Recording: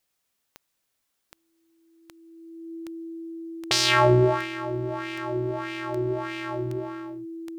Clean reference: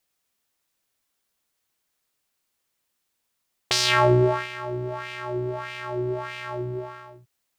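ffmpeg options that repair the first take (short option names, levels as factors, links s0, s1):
-af "adeclick=t=4,bandreject=f=330:w=30"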